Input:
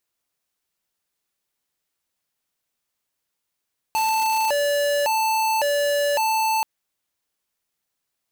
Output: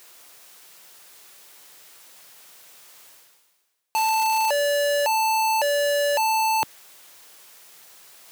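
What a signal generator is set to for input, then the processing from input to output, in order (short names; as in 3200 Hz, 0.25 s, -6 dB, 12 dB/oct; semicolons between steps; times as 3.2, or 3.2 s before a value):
siren hi-lo 577–882 Hz 0.9/s square -21 dBFS 2.68 s
HPF 190 Hz 12 dB/oct; bell 240 Hz -8 dB 0.79 oct; reverse; upward compressor, threshold -24 dBFS; reverse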